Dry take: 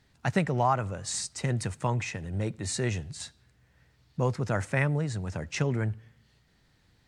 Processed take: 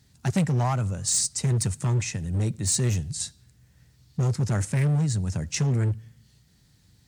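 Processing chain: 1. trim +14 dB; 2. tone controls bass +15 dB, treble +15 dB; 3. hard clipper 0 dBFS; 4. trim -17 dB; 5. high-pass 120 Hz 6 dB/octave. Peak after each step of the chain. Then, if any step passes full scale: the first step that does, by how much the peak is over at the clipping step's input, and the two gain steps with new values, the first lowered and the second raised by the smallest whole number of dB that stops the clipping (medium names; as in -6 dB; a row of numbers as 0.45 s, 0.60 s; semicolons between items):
+2.5 dBFS, +9.0 dBFS, 0.0 dBFS, -17.0 dBFS, -13.5 dBFS; step 1, 9.0 dB; step 1 +5 dB, step 4 -8 dB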